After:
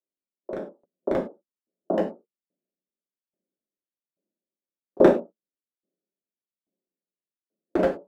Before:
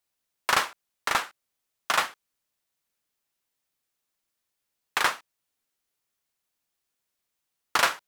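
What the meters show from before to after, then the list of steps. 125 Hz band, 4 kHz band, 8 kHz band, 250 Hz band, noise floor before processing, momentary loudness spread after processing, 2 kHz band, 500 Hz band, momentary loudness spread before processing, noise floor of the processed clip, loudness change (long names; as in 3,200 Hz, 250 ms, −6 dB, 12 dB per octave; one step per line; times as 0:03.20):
+13.5 dB, below −15 dB, below −25 dB, +21.5 dB, −82 dBFS, 18 LU, −13.0 dB, +16.0 dB, 10 LU, below −85 dBFS, +2.5 dB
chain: elliptic band-pass filter 200–590 Hz, stop band 60 dB
noise reduction from a noise print of the clip's start 17 dB
low-shelf EQ 420 Hz +11.5 dB
automatic gain control gain up to 11 dB
wave folding −13.5 dBFS
reverb whose tail is shaped and stops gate 130 ms falling, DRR −2 dB
tremolo with a ramp in dB decaying 1.2 Hz, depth 28 dB
level +8 dB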